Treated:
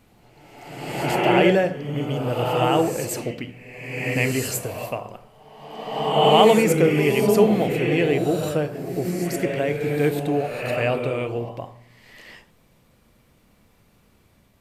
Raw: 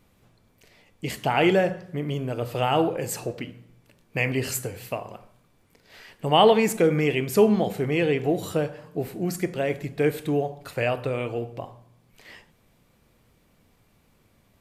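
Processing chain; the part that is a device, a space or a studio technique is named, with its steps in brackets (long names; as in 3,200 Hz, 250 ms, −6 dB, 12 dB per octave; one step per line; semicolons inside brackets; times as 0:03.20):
reverse reverb (reversed playback; convolution reverb RT60 1.4 s, pre-delay 83 ms, DRR 2 dB; reversed playback)
level +1.5 dB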